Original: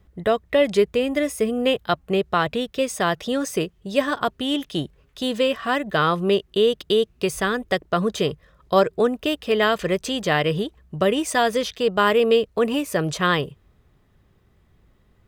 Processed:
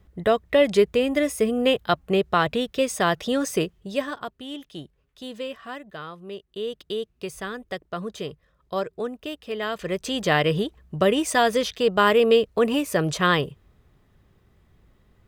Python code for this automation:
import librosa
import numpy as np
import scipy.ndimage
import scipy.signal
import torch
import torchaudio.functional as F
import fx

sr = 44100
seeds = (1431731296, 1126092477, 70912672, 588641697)

y = fx.gain(x, sr, db=fx.line((3.72, 0.0), (4.31, -12.0), (5.59, -12.0), (6.18, -19.5), (6.77, -10.0), (9.62, -10.0), (10.23, 0.0)))